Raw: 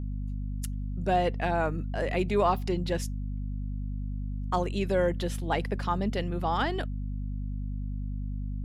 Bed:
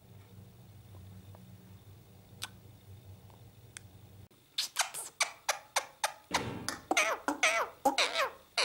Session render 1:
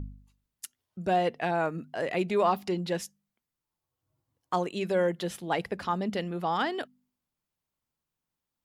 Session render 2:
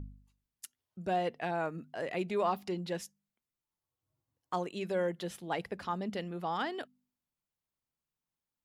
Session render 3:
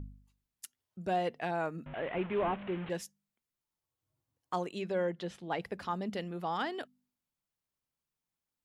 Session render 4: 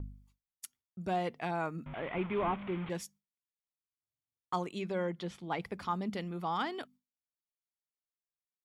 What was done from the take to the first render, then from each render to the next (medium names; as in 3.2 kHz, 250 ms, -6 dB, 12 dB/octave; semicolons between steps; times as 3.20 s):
de-hum 50 Hz, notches 5
trim -6 dB
1.86–2.90 s: one-bit delta coder 16 kbps, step -38.5 dBFS; 4.81–5.62 s: distance through air 85 m
comb 0.9 ms, depth 34%; gate with hold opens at -58 dBFS